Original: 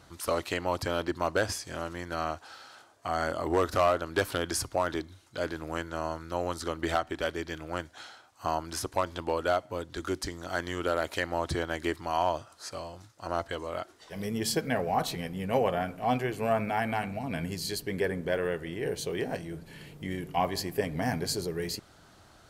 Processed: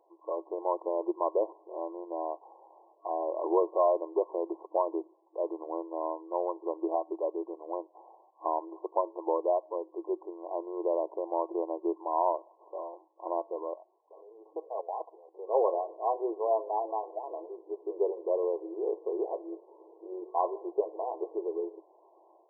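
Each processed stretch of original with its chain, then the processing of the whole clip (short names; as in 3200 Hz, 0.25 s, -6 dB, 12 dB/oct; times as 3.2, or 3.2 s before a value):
13.74–15.39 HPF 550 Hz + level quantiser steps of 17 dB
whole clip: FFT band-pass 320–1100 Hz; dynamic EQ 750 Hz, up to -4 dB, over -41 dBFS, Q 6.9; AGC gain up to 7 dB; gain -5.5 dB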